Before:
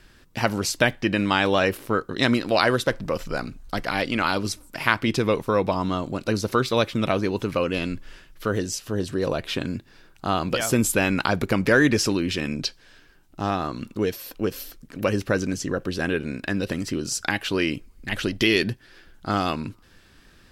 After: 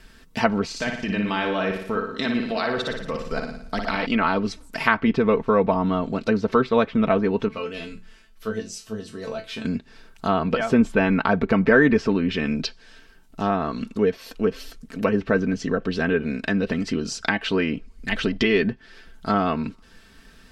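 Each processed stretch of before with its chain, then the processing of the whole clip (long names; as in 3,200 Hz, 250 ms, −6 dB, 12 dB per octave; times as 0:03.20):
0:00.65–0:04.06: output level in coarse steps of 14 dB + flutter between parallel walls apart 9.9 metres, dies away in 0.67 s
0:07.48–0:09.65: mains-hum notches 60/120/180/240/300/360/420/480/540 Hz + tuned comb filter 110 Hz, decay 0.24 s, mix 90%
whole clip: treble cut that deepens with the level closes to 1,900 Hz, closed at −20 dBFS; comb filter 4.5 ms, depth 63%; level +1.5 dB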